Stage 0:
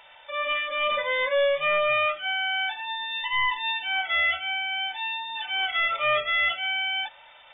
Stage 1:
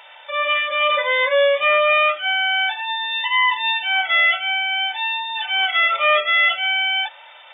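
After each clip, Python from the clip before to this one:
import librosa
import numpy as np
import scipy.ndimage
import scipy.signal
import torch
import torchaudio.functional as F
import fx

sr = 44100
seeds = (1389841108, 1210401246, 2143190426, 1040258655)

y = scipy.signal.sosfilt(scipy.signal.butter(2, 430.0, 'highpass', fs=sr, output='sos'), x)
y = y * 10.0 ** (7.5 / 20.0)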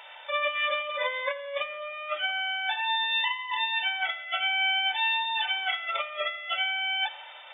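y = fx.over_compress(x, sr, threshold_db=-22.0, ratio=-0.5)
y = fx.echo_feedback(y, sr, ms=85, feedback_pct=60, wet_db=-18)
y = y * 10.0 ** (-6.5 / 20.0)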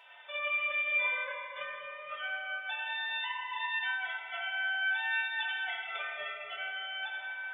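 y = fx.comb_fb(x, sr, f0_hz=140.0, decay_s=0.18, harmonics='odd', damping=0.0, mix_pct=90)
y = fx.room_shoebox(y, sr, seeds[0], volume_m3=120.0, walls='hard', distance_m=0.46)
y = y * 10.0 ** (1.0 / 20.0)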